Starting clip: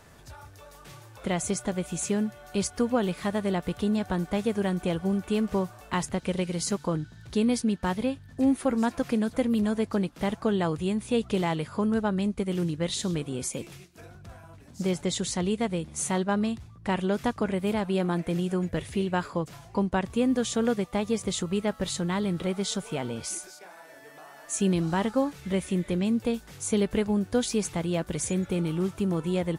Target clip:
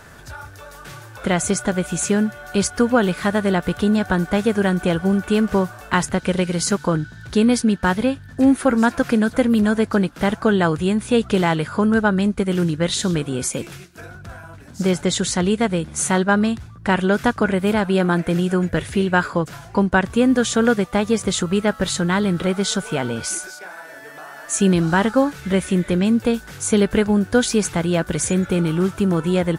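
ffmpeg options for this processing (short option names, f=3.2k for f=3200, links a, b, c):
-af "equalizer=f=1.5k:w=3.8:g=9,volume=8.5dB"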